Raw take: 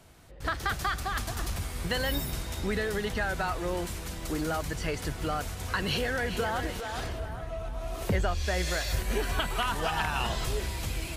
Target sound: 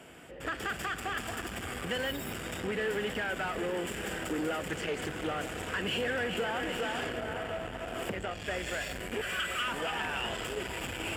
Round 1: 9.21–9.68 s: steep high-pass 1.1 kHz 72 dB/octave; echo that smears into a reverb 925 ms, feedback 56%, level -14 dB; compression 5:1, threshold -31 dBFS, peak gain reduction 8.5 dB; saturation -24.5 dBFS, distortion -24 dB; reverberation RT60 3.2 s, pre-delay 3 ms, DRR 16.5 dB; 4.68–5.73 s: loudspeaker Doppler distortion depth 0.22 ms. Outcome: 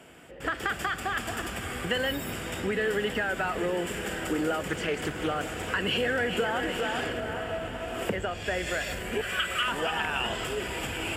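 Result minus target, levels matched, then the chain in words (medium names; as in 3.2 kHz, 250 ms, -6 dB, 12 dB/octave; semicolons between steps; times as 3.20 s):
saturation: distortion -14 dB
9.21–9.68 s: steep high-pass 1.1 kHz 72 dB/octave; echo that smears into a reverb 925 ms, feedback 56%, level -14 dB; compression 5:1, threshold -31 dBFS, peak gain reduction 8.5 dB; saturation -36.5 dBFS, distortion -10 dB; reverberation RT60 3.2 s, pre-delay 3 ms, DRR 16.5 dB; 4.68–5.73 s: loudspeaker Doppler distortion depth 0.22 ms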